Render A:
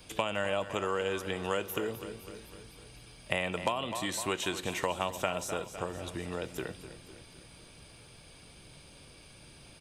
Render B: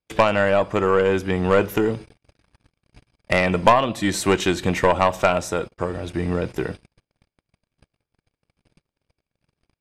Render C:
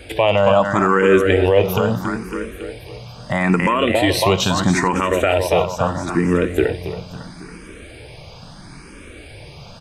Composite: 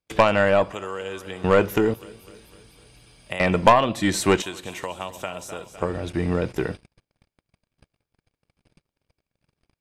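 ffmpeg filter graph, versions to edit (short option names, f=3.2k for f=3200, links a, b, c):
-filter_complex "[0:a]asplit=3[a][b][c];[1:a]asplit=4[d][e][f][g];[d]atrim=end=0.722[h];[a]atrim=start=0.718:end=1.442[i];[e]atrim=start=1.438:end=1.942[j];[b]atrim=start=1.938:end=3.402[k];[f]atrim=start=3.398:end=4.422[l];[c]atrim=start=4.418:end=5.822[m];[g]atrim=start=5.818[n];[h][i]acrossfade=d=0.004:c1=hsin:c2=hsin[o];[o][j]acrossfade=d=0.004:c1=hsin:c2=hsin[p];[p][k]acrossfade=d=0.004:c1=hsin:c2=hsin[q];[q][l]acrossfade=d=0.004:c1=hsin:c2=hsin[r];[r][m]acrossfade=d=0.004:c1=hsin:c2=hsin[s];[s][n]acrossfade=d=0.004:c1=hsin:c2=hsin"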